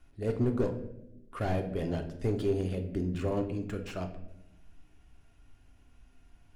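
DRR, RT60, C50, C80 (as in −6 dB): 4.0 dB, 0.85 s, 10.0 dB, 13.5 dB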